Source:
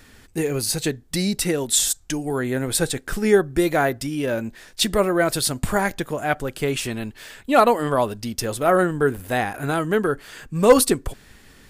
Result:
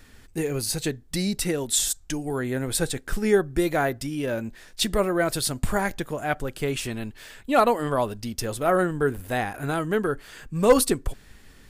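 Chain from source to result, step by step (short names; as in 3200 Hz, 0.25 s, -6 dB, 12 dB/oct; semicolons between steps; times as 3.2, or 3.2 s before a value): low shelf 66 Hz +7.5 dB; gain -4 dB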